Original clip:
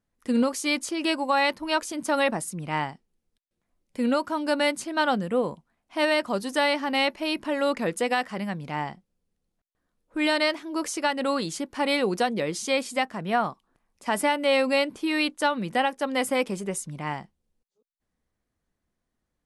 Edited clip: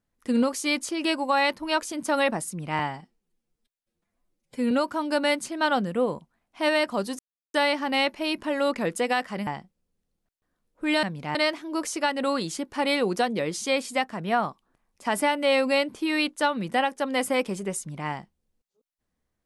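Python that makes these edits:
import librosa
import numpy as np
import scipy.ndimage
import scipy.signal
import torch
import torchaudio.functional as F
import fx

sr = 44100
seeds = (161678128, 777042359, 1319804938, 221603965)

y = fx.edit(x, sr, fx.stretch_span(start_s=2.79, length_s=1.28, factor=1.5),
    fx.insert_silence(at_s=6.55, length_s=0.35),
    fx.move(start_s=8.48, length_s=0.32, to_s=10.36), tone=tone)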